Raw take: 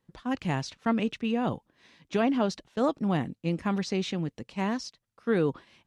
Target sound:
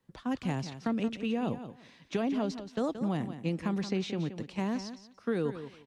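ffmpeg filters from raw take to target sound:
ffmpeg -i in.wav -filter_complex "[0:a]acrossover=split=100|620|4600[link_01][link_02][link_03][link_04];[link_01]acompressor=threshold=-54dB:ratio=4[link_05];[link_02]acompressor=threshold=-29dB:ratio=4[link_06];[link_03]acompressor=threshold=-41dB:ratio=4[link_07];[link_04]acompressor=threshold=-51dB:ratio=4[link_08];[link_05][link_06][link_07][link_08]amix=inputs=4:normalize=0,asplit=2[link_09][link_10];[link_10]aecho=0:1:176|352|528:0.282|0.0535|0.0102[link_11];[link_09][link_11]amix=inputs=2:normalize=0" out.wav

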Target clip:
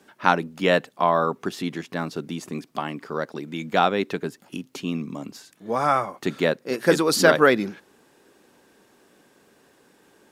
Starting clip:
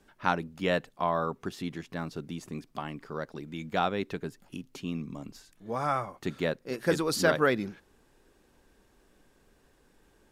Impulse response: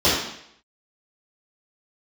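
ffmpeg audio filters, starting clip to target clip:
-af "highpass=180,volume=8.5dB"

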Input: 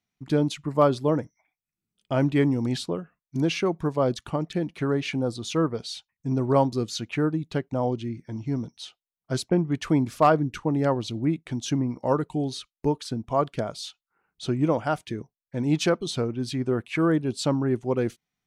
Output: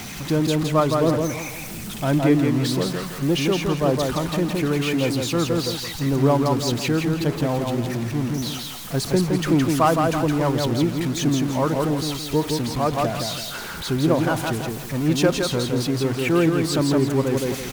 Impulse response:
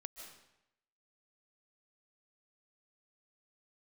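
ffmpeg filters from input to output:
-filter_complex "[0:a]aeval=exprs='val(0)+0.5*0.0398*sgn(val(0))':channel_layout=same,asplit=2[link_01][link_02];[link_02]aecho=0:1:173|346|519|692|865:0.668|0.247|0.0915|0.0339|0.0125[link_03];[link_01][link_03]amix=inputs=2:normalize=0,aphaser=in_gain=1:out_gain=1:delay=1.1:decay=0.21:speed=1.7:type=triangular,asetrate=45938,aresample=44100"

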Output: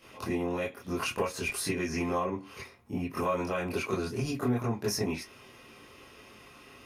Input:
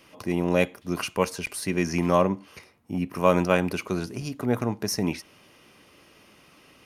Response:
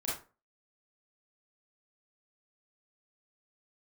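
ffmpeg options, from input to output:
-filter_complex "[0:a]alimiter=limit=-11dB:level=0:latency=1:release=102,acompressor=threshold=-28dB:ratio=6[link_01];[1:a]atrim=start_sample=2205,afade=type=out:start_time=0.16:duration=0.01,atrim=end_sample=7497,asetrate=70560,aresample=44100[link_02];[link_01][link_02]afir=irnorm=-1:irlink=0,volume=2.5dB"

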